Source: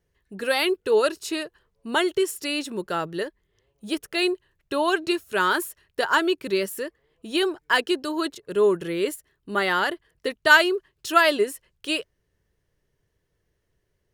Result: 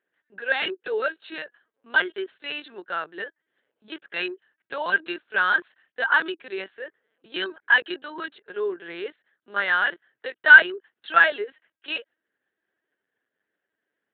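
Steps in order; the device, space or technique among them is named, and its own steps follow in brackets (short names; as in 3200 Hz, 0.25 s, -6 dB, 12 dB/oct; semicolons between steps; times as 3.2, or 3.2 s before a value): dynamic EQ 3500 Hz, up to +4 dB, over -39 dBFS, Q 0.78; talking toy (LPC vocoder at 8 kHz pitch kept; HPF 380 Hz 12 dB/oct; bell 1600 Hz +12 dB 0.42 oct); gain -6 dB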